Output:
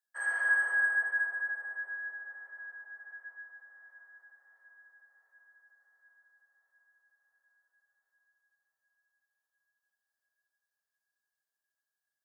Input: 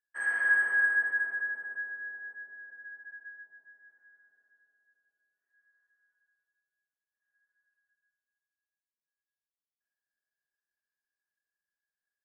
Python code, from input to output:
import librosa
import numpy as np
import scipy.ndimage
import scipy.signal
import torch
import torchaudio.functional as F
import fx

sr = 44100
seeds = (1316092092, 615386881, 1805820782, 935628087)

p1 = scipy.signal.sosfilt(scipy.signal.butter(4, 520.0, 'highpass', fs=sr, output='sos'), x)
p2 = fx.peak_eq(p1, sr, hz=2300.0, db=-10.0, octaves=1.0)
p3 = p2 + fx.echo_wet_lowpass(p2, sr, ms=700, feedback_pct=67, hz=1900.0, wet_db=-16.0, dry=0)
y = p3 * 10.0 ** (3.0 / 20.0)